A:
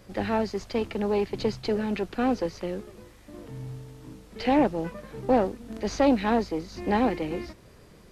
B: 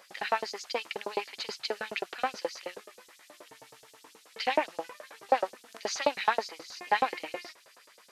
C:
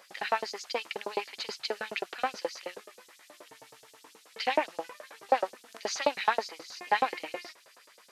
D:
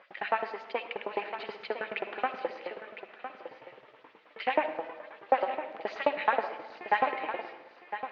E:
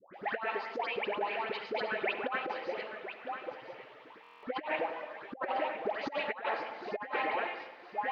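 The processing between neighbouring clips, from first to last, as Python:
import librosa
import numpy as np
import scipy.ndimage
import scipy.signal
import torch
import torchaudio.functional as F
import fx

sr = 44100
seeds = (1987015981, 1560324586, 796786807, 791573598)

y1 = fx.filter_lfo_highpass(x, sr, shape='saw_up', hz=9.4, low_hz=580.0, high_hz=7200.0, q=1.4)
y1 = y1 * librosa.db_to_amplitude(2.0)
y2 = fx.low_shelf(y1, sr, hz=68.0, db=-8.0)
y3 = scipy.signal.sosfilt(scipy.signal.butter(4, 2800.0, 'lowpass', fs=sr, output='sos'), y2)
y3 = y3 + 10.0 ** (-10.5 / 20.0) * np.pad(y3, (int(1008 * sr / 1000.0), 0))[:len(y3)]
y3 = fx.rev_freeverb(y3, sr, rt60_s=1.2, hf_ratio=0.5, predelay_ms=25, drr_db=9.5)
y4 = fx.dispersion(y3, sr, late='highs', ms=149.0, hz=1100.0)
y4 = fx.over_compress(y4, sr, threshold_db=-33.0, ratio=-0.5)
y4 = fx.buffer_glitch(y4, sr, at_s=(4.22,), block=1024, repeats=8)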